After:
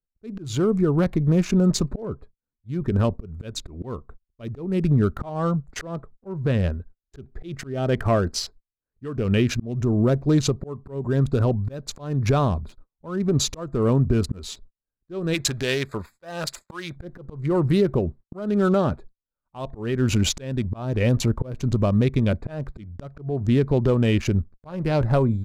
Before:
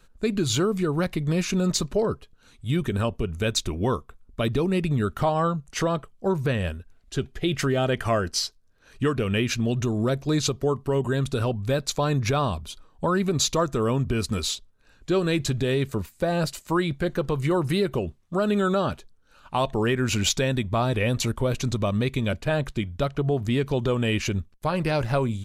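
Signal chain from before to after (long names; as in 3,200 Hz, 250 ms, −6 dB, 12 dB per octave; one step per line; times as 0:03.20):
adaptive Wiener filter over 15 samples
noise gate −44 dBFS, range −38 dB
tilt shelving filter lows +3.5 dB, about 680 Hz, from 0:15.33 lows −7.5 dB, from 0:16.95 lows +3.5 dB
volume swells 324 ms
level +2.5 dB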